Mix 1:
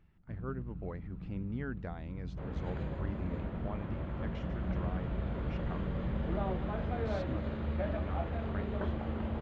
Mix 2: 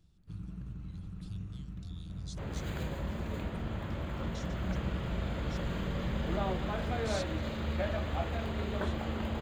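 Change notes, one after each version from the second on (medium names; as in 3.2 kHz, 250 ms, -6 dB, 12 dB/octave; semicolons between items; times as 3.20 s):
speech: add Chebyshev band-stop 110–3500 Hz, order 4; master: remove tape spacing loss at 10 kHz 33 dB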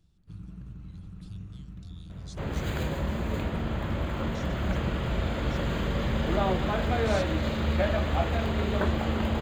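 second sound +7.5 dB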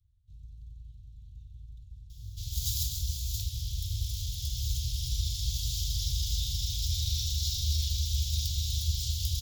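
speech: entry +1.90 s; second sound: remove boxcar filter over 8 samples; master: add Chebyshev band-stop 110–3500 Hz, order 4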